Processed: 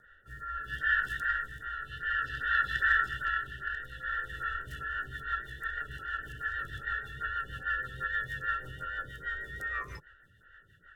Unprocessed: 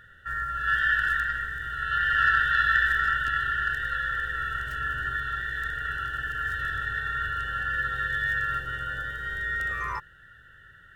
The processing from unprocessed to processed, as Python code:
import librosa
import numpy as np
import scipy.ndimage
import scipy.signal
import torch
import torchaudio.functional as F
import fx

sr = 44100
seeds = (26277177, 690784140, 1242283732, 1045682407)

y = fx.rotary_switch(x, sr, hz=0.6, then_hz=6.3, switch_at_s=4.21)
y = fx.stagger_phaser(y, sr, hz=2.5)